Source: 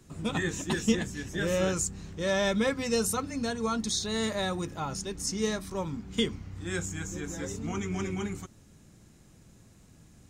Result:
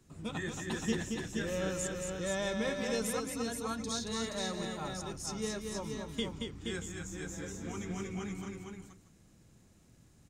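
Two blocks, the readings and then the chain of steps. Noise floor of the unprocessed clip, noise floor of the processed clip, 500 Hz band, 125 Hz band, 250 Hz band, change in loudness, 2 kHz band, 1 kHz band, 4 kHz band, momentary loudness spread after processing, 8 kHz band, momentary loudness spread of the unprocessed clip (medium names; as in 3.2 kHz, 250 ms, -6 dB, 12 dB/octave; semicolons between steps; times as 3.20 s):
-57 dBFS, -63 dBFS, -6.0 dB, -6.5 dB, -6.0 dB, -6.0 dB, -6.0 dB, -6.0 dB, -6.0 dB, 8 LU, -6.0 dB, 8 LU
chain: multi-tap echo 226/474/629 ms -5/-5/-17 dB; trim -8 dB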